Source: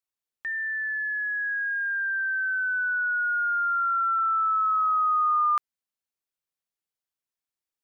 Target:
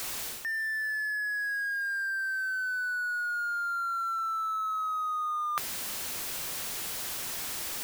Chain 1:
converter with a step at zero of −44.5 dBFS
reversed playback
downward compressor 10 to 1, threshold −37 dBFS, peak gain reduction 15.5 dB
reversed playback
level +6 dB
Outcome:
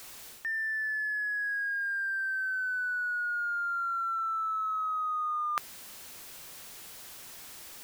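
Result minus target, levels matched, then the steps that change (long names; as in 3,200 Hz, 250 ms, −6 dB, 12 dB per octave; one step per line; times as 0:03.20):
converter with a step at zero: distortion −10 dB
change: converter with a step at zero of −33 dBFS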